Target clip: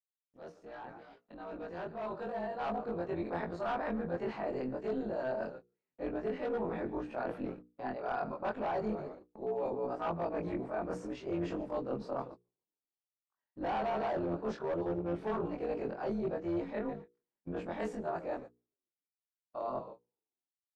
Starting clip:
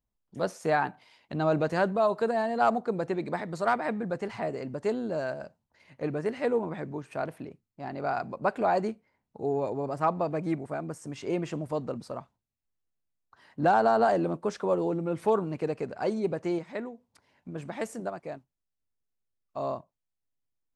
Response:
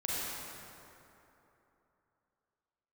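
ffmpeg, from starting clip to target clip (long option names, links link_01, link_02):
-filter_complex "[0:a]afftfilt=real='re':imag='-im':win_size=2048:overlap=0.75,asplit=6[link_01][link_02][link_03][link_04][link_05][link_06];[link_02]adelay=144,afreqshift=-64,volume=-20dB[link_07];[link_03]adelay=288,afreqshift=-128,volume=-24.7dB[link_08];[link_04]adelay=432,afreqshift=-192,volume=-29.5dB[link_09];[link_05]adelay=576,afreqshift=-256,volume=-34.2dB[link_10];[link_06]adelay=720,afreqshift=-320,volume=-38.9dB[link_11];[link_01][link_07][link_08][link_09][link_10][link_11]amix=inputs=6:normalize=0,acrossover=split=150|1300[link_12][link_13][link_14];[link_12]acrusher=bits=5:mix=0:aa=0.000001[link_15];[link_15][link_13][link_14]amix=inputs=3:normalize=0,volume=27.5dB,asoftclip=hard,volume=-27.5dB,firequalizer=gain_entry='entry(170,0);entry(4300,-7);entry(8900,-21)':delay=0.05:min_phase=1,agate=range=-38dB:threshold=-55dB:ratio=16:detection=peak,tremolo=f=250:d=0.519,bandreject=frequency=60:width_type=h:width=6,bandreject=frequency=120:width_type=h:width=6,bandreject=frequency=180:width_type=h:width=6,bandreject=frequency=240:width_type=h:width=6,bandreject=frequency=300:width_type=h:width=6,bandreject=frequency=360:width_type=h:width=6,bandreject=frequency=420:width_type=h:width=6,bandreject=frequency=480:width_type=h:width=6,areverse,acompressor=threshold=-48dB:ratio=4,areverse,bandreject=frequency=2100:width=19,dynaudnorm=framelen=480:gausssize=9:maxgain=13.5dB"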